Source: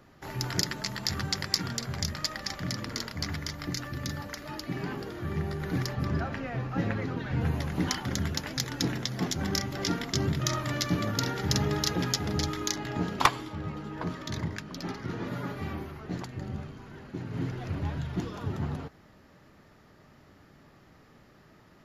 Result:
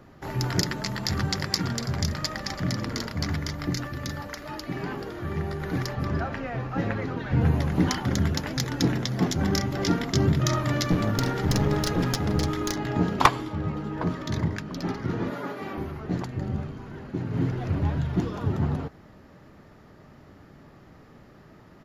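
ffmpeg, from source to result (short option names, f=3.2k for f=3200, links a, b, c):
-filter_complex "[0:a]asplit=3[a][b][c];[a]afade=t=out:st=1.06:d=0.02[d];[b]aecho=1:1:331:0.133,afade=t=in:st=1.06:d=0.02,afade=t=out:st=3.31:d=0.02[e];[c]afade=t=in:st=3.31:d=0.02[f];[d][e][f]amix=inputs=3:normalize=0,asettb=1/sr,asplit=3[g][h][i];[g]atrim=end=3.874[j];[h]atrim=start=3.87:end=7.32,asetpts=PTS-STARTPTS,afade=t=in:d=0.004:c=qsin,afade=t=out:st=3.446:d=0.004:c=qsin,equalizer=f=150:w=0.41:g=-6[k];[i]atrim=start=7.316[l];[j][k]acrossfade=d=0.004:c1=hsin:c2=qsin[m];[m][l]acrossfade=d=0.004:c1=qsin:c2=hsin,asettb=1/sr,asplit=3[n][o][p];[n]atrim=end=10.914[q];[o]atrim=start=10.91:end=12.78,asetpts=PTS-STARTPTS,afade=t=in:d=0.004:c=qsin,afade=t=out:st=1.866:d=0.004:c=qsin,aeval=exprs='clip(val(0),-1,0.0299)':c=same[r];[p]atrim=start=12.776[s];[q][r]acrossfade=d=0.004:c1=hsin:c2=qsin[t];[t][s]acrossfade=d=0.004:c1=qsin:c2=hsin,asettb=1/sr,asplit=3[u][v][w];[u]atrim=end=15.304[x];[v]atrim=start=15.3:end=15.78,asetpts=PTS-STARTPTS,afade=t=in:d=0.004:c=qsin,afade=t=out:st=0.476:d=0.004:c=qsin,highpass=310[y];[w]atrim=start=15.776[z];[x][y]acrossfade=d=0.004:c1=hsin:c2=qsin[aa];[aa][z]acrossfade=d=0.004:c1=qsin:c2=hsin,tiltshelf=f=1.5k:g=3.5,volume=3.5dB"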